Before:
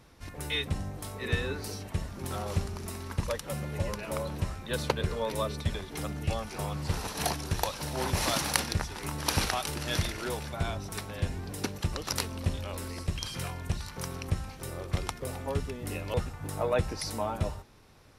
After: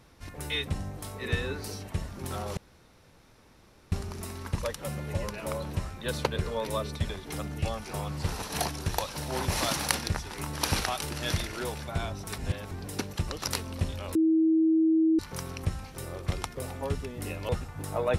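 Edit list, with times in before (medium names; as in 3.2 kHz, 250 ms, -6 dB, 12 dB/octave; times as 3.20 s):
2.57 s: insert room tone 1.35 s
11.03–11.36 s: reverse
12.80–13.84 s: bleep 321 Hz -19.5 dBFS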